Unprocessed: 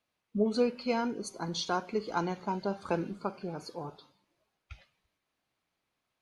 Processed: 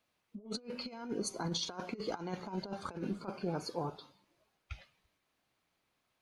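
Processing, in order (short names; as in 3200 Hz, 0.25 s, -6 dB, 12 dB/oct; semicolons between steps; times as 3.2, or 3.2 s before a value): negative-ratio compressor -36 dBFS, ratio -0.5; gain -2 dB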